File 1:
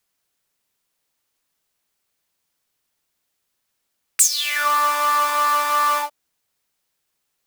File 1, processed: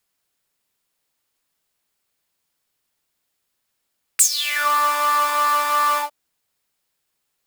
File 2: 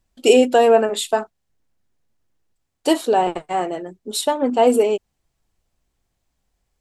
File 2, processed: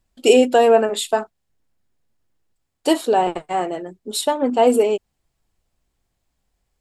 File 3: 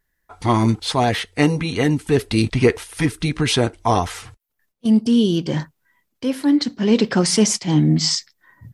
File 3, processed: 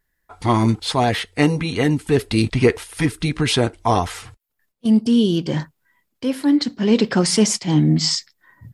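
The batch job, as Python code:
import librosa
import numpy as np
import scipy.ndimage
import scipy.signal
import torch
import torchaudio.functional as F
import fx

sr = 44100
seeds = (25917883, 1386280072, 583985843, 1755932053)

y = fx.notch(x, sr, hz=6000.0, q=20.0)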